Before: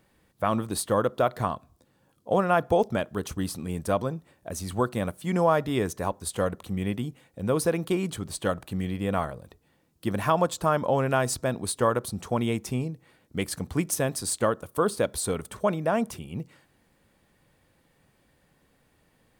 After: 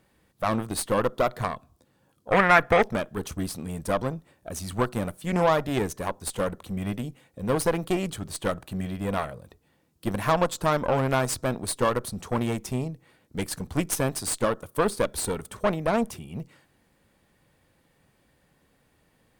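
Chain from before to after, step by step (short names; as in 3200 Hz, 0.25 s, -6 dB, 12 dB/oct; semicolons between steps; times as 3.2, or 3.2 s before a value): added harmonics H 4 -17 dB, 8 -25 dB, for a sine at -9.5 dBFS; 2.32–2.91 bell 1900 Hz +15 dB 1 oct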